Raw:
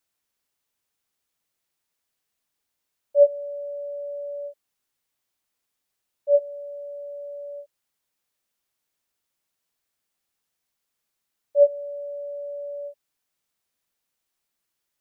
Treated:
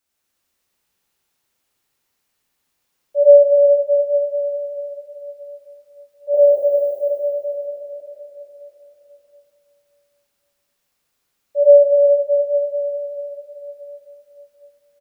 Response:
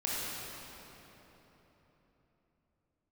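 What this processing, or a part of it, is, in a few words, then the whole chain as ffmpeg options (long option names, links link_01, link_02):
cave: -filter_complex "[0:a]asettb=1/sr,asplit=3[link_01][link_02][link_03];[link_01]atrim=end=6.344[link_04];[link_02]atrim=start=6.34:end=6.95,asetpts=PTS-STARTPTS,afade=type=in:duration=0.004:curve=qsin,afade=type=out:start_time=0.606:duration=0.004:curve=qsin,aemphasis=mode=production:type=bsi[link_05];[link_03]atrim=start=6.946[link_06];[link_04][link_05]acrossfade=duration=0.004:curve1=hsin:curve2=qsin[link_07];[link_07][link_06]acrossfade=duration=0.004:curve1=qsin:curve2=hsin,aecho=1:1:163:0.316,aecho=1:1:240:0.501[link_08];[1:a]atrim=start_sample=2205[link_09];[link_08][link_09]afir=irnorm=-1:irlink=0,volume=1.5dB"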